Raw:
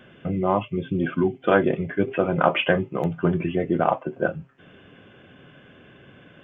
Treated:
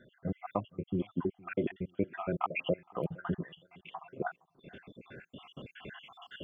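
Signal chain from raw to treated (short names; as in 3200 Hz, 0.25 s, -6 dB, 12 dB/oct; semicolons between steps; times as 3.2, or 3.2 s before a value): random spectral dropouts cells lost 69%; recorder AGC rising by 6.4 dB/s; on a send: darkening echo 0.464 s, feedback 33%, low-pass 1200 Hz, level -24 dB; on the sum: gain -8.5 dB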